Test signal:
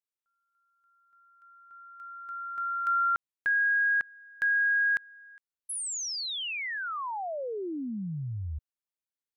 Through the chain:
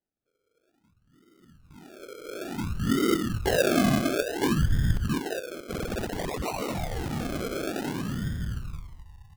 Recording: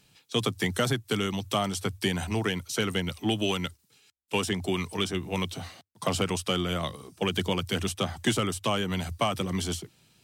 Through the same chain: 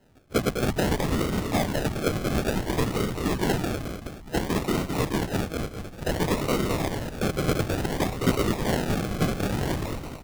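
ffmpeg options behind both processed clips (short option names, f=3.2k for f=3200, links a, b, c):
-filter_complex "[0:a]afftfilt=real='hypot(re,im)*cos(2*PI*random(0))':imag='hypot(re,im)*sin(2*PI*random(1))':win_size=512:overlap=0.75,asplit=8[a][b][c][d][e][f][g][h];[b]adelay=211,afreqshift=-40,volume=-4dB[i];[c]adelay=422,afreqshift=-80,volume=-9.7dB[j];[d]adelay=633,afreqshift=-120,volume=-15.4dB[k];[e]adelay=844,afreqshift=-160,volume=-21dB[l];[f]adelay=1055,afreqshift=-200,volume=-26.7dB[m];[g]adelay=1266,afreqshift=-240,volume=-32.4dB[n];[h]adelay=1477,afreqshift=-280,volume=-38.1dB[o];[a][i][j][k][l][m][n][o]amix=inputs=8:normalize=0,acrusher=samples=37:mix=1:aa=0.000001:lfo=1:lforange=22.2:lforate=0.57,volume=7.5dB"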